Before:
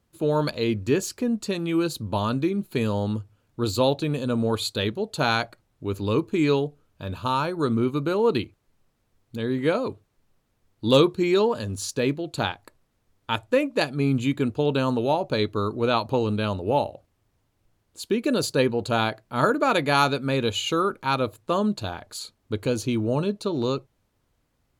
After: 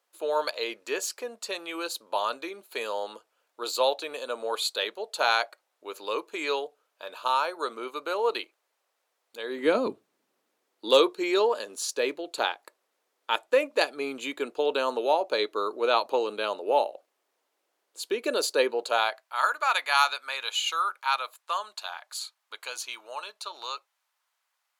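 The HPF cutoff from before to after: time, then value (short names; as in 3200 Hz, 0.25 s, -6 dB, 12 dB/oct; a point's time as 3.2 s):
HPF 24 dB/oct
9.43 s 520 Hz
9.83 s 190 Hz
10.92 s 410 Hz
18.73 s 410 Hz
19.39 s 870 Hz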